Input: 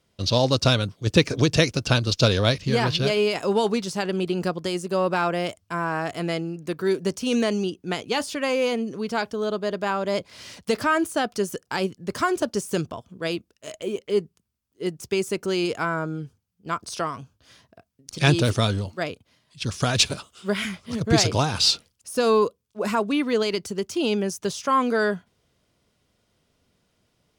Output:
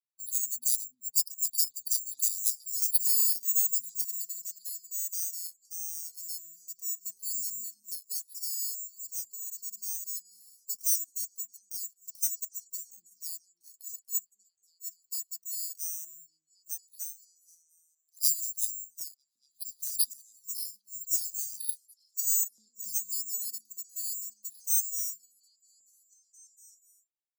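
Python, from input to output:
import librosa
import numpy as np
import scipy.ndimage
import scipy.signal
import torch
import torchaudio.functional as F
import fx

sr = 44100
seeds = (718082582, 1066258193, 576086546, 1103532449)

p1 = fx.bin_expand(x, sr, power=1.5)
p2 = scipy.signal.lfilter([1.0, -0.9], [1.0], p1)
p3 = (np.kron(scipy.signal.resample_poly(p2, 1, 6), np.eye(6)[0]) * 6)[:len(p2)]
p4 = scipy.signal.sosfilt(scipy.signal.cheby1(5, 1.0, [240.0, 4700.0], 'bandstop', fs=sr, output='sos'), p3)
p5 = p4 + fx.echo_stepped(p4, sr, ms=237, hz=310.0, octaves=0.7, feedback_pct=70, wet_db=-5.5, dry=0)
p6 = fx.filter_lfo_highpass(p5, sr, shape='saw_up', hz=0.31, low_hz=490.0, high_hz=2300.0, q=0.94)
p7 = fx.high_shelf(p6, sr, hz=9300.0, db=7.5, at=(2.82, 4.22))
p8 = fx.level_steps(p7, sr, step_db=16)
y = p7 + F.gain(torch.from_numpy(p8), -1.0).numpy()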